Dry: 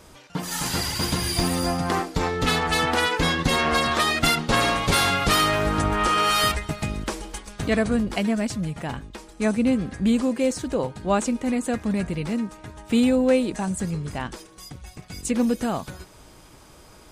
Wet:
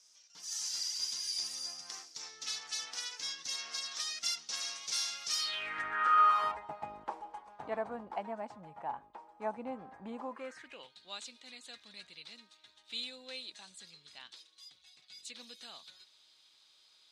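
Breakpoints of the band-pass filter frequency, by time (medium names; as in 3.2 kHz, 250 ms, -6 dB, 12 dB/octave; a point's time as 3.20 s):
band-pass filter, Q 5.2
5.38 s 5.7 kHz
5.71 s 2.1 kHz
6.59 s 860 Hz
10.25 s 860 Hz
10.93 s 3.9 kHz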